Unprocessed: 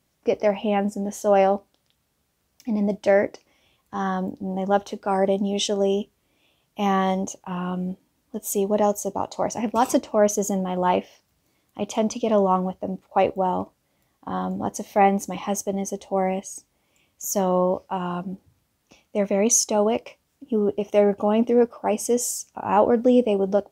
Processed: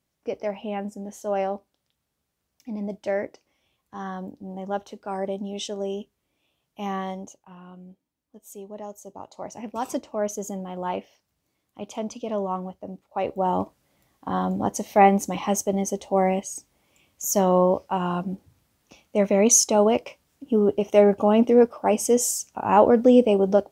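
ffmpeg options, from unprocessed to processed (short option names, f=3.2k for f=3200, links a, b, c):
-af "volume=11dB,afade=t=out:st=6.96:d=0.6:silence=0.354813,afade=t=in:st=8.87:d=1.12:silence=0.354813,afade=t=in:st=13.2:d=0.41:silence=0.316228"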